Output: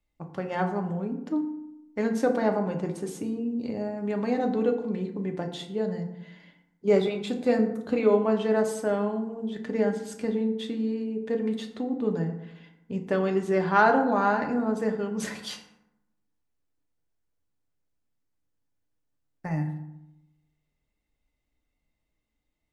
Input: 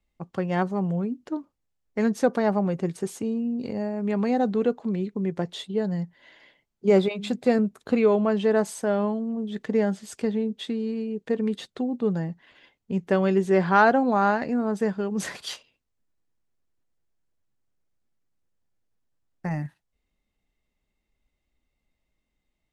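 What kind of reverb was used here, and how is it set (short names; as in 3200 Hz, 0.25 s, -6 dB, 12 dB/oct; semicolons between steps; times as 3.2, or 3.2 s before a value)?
FDN reverb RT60 0.87 s, low-frequency decay 1.25×, high-frequency decay 0.5×, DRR 3.5 dB; gain -3.5 dB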